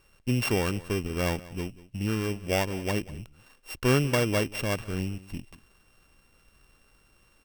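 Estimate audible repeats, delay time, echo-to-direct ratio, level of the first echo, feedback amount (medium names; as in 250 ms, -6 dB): 1, 190 ms, -19.0 dB, -19.0 dB, no regular repeats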